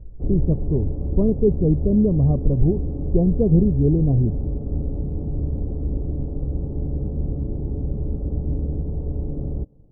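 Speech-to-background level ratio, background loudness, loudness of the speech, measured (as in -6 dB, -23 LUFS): 7.0 dB, -27.5 LUFS, -20.5 LUFS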